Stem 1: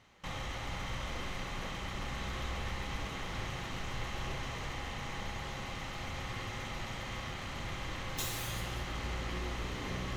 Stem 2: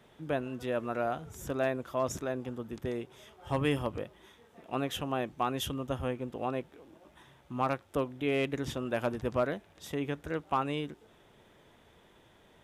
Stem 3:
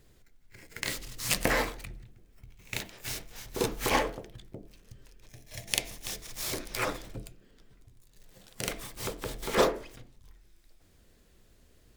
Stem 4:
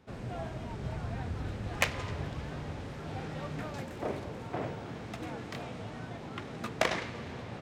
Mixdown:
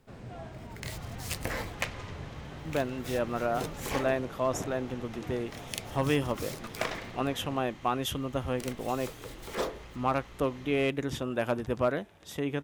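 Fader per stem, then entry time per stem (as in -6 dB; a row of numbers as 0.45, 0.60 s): -11.5, +2.0, -8.5, -4.5 dB; 0.70, 2.45, 0.00, 0.00 s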